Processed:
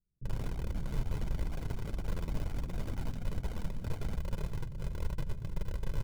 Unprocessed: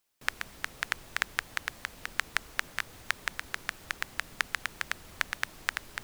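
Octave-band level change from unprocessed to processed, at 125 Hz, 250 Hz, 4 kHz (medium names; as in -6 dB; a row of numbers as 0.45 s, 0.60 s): +18.0 dB, +11.5 dB, -16.0 dB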